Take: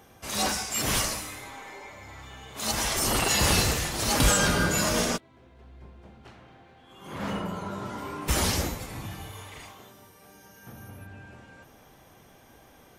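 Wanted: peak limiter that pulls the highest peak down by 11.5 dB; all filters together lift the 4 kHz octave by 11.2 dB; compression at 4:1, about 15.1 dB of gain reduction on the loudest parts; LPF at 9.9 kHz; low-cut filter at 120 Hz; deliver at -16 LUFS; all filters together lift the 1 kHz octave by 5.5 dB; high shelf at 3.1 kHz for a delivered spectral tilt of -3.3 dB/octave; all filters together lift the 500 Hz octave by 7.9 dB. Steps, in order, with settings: high-pass 120 Hz; low-pass 9.9 kHz; peaking EQ 500 Hz +8.5 dB; peaking EQ 1 kHz +3 dB; treble shelf 3.1 kHz +7 dB; peaking EQ 4 kHz +8.5 dB; compression 4:1, threshold -31 dBFS; trim +20.5 dB; peak limiter -6.5 dBFS

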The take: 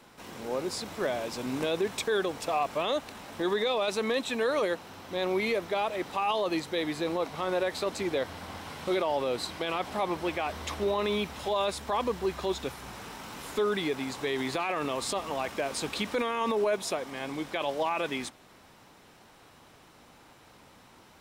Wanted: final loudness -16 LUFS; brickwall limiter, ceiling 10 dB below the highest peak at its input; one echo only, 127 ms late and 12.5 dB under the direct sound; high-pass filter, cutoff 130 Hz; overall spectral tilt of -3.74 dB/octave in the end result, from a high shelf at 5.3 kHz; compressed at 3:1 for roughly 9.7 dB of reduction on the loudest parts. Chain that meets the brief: high-pass 130 Hz; treble shelf 5.3 kHz -5.5 dB; compression 3:1, threshold -38 dBFS; peak limiter -34.5 dBFS; delay 127 ms -12.5 dB; trim +27.5 dB

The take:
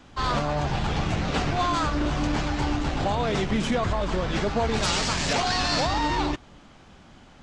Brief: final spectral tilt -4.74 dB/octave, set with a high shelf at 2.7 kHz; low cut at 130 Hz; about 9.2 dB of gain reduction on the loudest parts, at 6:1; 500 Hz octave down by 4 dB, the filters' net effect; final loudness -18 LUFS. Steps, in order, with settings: high-pass 130 Hz; peaking EQ 500 Hz -5 dB; treble shelf 2.7 kHz -5 dB; compression 6:1, threshold -33 dBFS; trim +18 dB

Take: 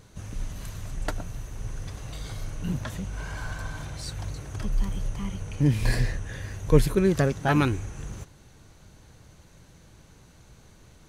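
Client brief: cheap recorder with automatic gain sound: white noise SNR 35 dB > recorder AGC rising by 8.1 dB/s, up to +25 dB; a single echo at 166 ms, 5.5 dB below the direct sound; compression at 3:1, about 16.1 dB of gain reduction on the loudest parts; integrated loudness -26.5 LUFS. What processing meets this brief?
compression 3:1, threshold -34 dBFS; delay 166 ms -5.5 dB; white noise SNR 35 dB; recorder AGC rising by 8.1 dB/s, up to +25 dB; trim +10 dB

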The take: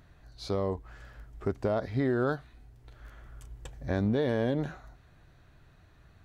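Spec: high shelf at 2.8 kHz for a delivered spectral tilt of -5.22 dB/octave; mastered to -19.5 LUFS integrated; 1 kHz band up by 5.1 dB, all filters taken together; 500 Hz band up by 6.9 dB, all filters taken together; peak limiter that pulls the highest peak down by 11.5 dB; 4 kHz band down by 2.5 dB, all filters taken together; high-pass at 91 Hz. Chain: high-pass 91 Hz; peaking EQ 500 Hz +7.5 dB; peaking EQ 1 kHz +4 dB; treble shelf 2.8 kHz +3 dB; peaking EQ 4 kHz -5.5 dB; trim +15.5 dB; peak limiter -8 dBFS

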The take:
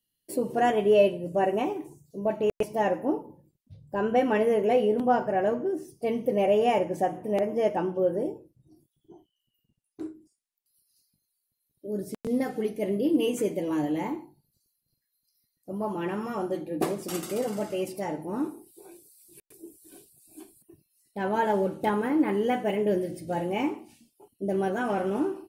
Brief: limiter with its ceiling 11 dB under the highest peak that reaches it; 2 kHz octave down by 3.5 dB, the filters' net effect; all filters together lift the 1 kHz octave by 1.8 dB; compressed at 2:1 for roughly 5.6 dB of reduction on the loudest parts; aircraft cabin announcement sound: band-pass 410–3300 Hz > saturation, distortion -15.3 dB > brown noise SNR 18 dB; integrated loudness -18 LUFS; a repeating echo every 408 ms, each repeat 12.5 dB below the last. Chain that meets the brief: peaking EQ 1 kHz +4 dB; peaking EQ 2 kHz -5.5 dB; compression 2:1, threshold -26 dBFS; peak limiter -26.5 dBFS; band-pass 410–3300 Hz; feedback delay 408 ms, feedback 24%, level -12.5 dB; saturation -33 dBFS; brown noise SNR 18 dB; trim +22.5 dB

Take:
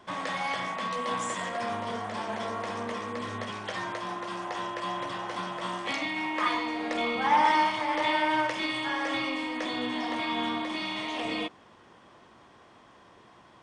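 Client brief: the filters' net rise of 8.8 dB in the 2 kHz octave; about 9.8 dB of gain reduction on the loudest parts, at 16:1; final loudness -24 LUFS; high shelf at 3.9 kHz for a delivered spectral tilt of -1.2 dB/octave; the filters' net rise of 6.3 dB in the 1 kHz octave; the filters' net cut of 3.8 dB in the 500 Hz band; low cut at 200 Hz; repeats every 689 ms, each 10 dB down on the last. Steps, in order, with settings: high-pass 200 Hz; peaking EQ 500 Hz -9 dB; peaking EQ 1 kHz +7.5 dB; peaking EQ 2 kHz +7 dB; treble shelf 3.9 kHz +7 dB; compression 16:1, threshold -22 dBFS; feedback delay 689 ms, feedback 32%, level -10 dB; trim +2.5 dB

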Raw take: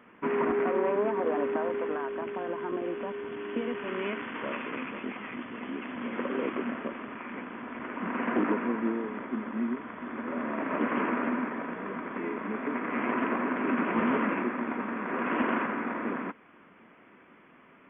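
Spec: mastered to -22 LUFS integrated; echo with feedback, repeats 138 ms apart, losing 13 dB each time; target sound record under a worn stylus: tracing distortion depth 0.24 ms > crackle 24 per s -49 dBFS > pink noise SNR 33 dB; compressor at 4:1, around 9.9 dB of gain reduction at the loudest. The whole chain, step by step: compression 4:1, threshold -35 dBFS; feedback delay 138 ms, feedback 22%, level -13 dB; tracing distortion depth 0.24 ms; crackle 24 per s -49 dBFS; pink noise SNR 33 dB; trim +16 dB

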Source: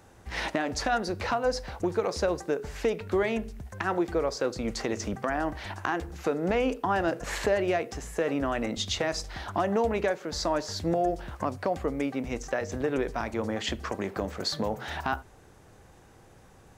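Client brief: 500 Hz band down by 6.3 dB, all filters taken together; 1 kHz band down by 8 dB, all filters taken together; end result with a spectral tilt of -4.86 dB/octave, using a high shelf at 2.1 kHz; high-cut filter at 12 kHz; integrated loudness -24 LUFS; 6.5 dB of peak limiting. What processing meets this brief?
low-pass 12 kHz; peaking EQ 500 Hz -5.5 dB; peaking EQ 1 kHz -7.5 dB; treble shelf 2.1 kHz -7.5 dB; trim +12.5 dB; peak limiter -12 dBFS

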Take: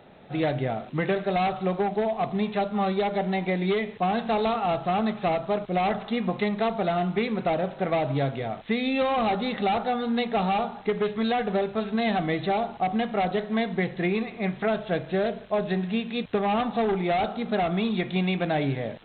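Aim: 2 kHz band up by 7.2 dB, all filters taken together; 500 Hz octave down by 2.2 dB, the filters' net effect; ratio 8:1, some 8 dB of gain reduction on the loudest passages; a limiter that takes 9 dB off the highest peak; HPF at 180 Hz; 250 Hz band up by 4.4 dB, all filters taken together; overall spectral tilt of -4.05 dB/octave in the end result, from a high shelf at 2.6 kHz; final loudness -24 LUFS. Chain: high-pass 180 Hz; peaking EQ 250 Hz +9 dB; peaking EQ 500 Hz -6.5 dB; peaking EQ 2 kHz +5 dB; treble shelf 2.6 kHz +8 dB; compression 8:1, threshold -25 dBFS; trim +7.5 dB; peak limiter -14.5 dBFS

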